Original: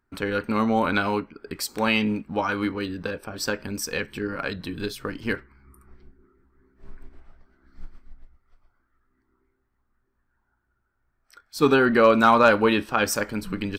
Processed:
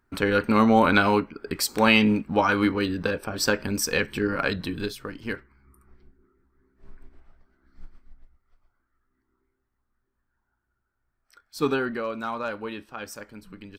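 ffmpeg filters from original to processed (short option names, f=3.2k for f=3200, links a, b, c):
-af "volume=4dB,afade=t=out:st=4.53:d=0.52:silence=0.375837,afade=t=out:st=11.6:d=0.44:silence=0.316228"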